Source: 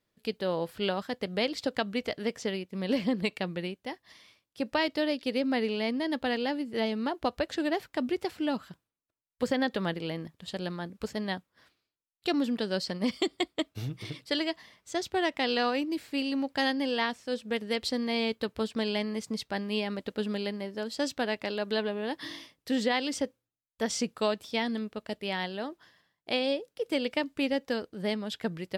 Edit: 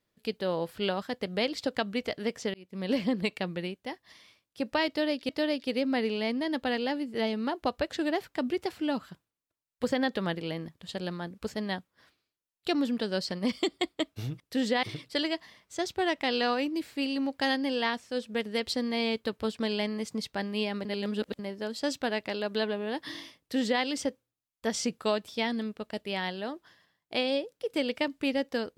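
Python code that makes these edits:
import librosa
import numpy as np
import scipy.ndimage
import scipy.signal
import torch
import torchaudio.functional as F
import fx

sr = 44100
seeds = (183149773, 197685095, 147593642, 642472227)

y = fx.edit(x, sr, fx.fade_in_span(start_s=2.54, length_s=0.43, curve='qsin'),
    fx.repeat(start_s=4.88, length_s=0.41, count=2),
    fx.reverse_span(start_s=20.01, length_s=0.54),
    fx.duplicate(start_s=22.55, length_s=0.43, to_s=13.99), tone=tone)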